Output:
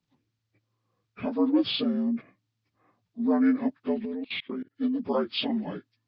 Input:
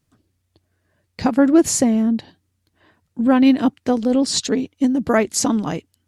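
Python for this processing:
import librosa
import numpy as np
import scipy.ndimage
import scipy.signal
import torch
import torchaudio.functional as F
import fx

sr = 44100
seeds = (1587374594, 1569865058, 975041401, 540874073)

y = fx.partial_stretch(x, sr, pct=78)
y = fx.level_steps(y, sr, step_db=24, at=(4.05, 4.77))
y = F.gain(torch.from_numpy(y), -8.5).numpy()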